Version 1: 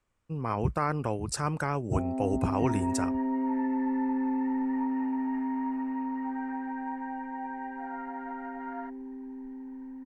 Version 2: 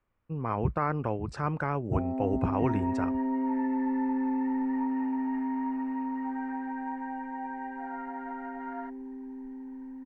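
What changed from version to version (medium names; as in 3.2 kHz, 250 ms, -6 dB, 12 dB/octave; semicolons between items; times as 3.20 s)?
speech: add low-pass 2.4 kHz 12 dB/octave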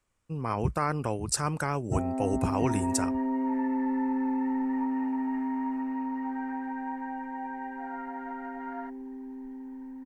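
speech: remove low-pass 2.4 kHz 12 dB/octave; first sound: add peaking EQ 1.6 kHz +14 dB 0.97 oct; master: add treble shelf 5.4 kHz +9 dB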